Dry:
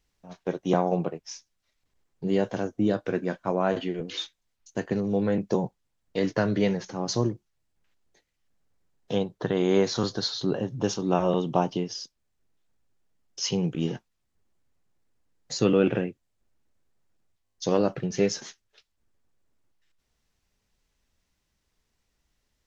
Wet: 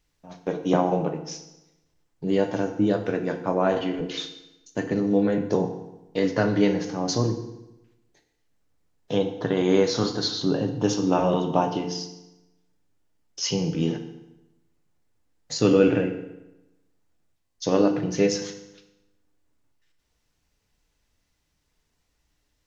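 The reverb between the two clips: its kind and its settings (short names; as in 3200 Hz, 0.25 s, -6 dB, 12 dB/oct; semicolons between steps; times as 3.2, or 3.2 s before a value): FDN reverb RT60 0.96 s, low-frequency decay 1.1×, high-frequency decay 0.85×, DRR 5 dB; gain +1.5 dB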